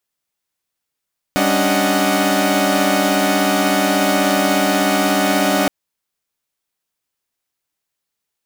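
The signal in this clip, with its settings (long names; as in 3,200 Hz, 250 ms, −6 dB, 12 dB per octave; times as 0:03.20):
held notes G3/C#4/D4/D#5/F#5 saw, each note −18 dBFS 4.32 s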